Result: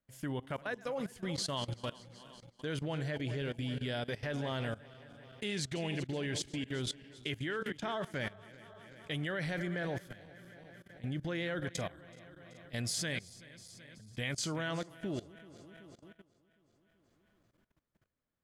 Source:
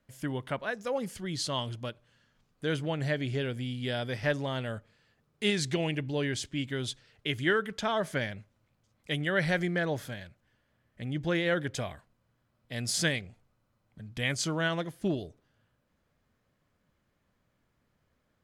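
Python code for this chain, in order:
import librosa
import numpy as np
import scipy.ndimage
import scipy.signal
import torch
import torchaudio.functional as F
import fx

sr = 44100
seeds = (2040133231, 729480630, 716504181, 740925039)

y = fx.reverse_delay_fb(x, sr, ms=190, feedback_pct=72, wet_db=-14.0)
y = fx.level_steps(y, sr, step_db=18)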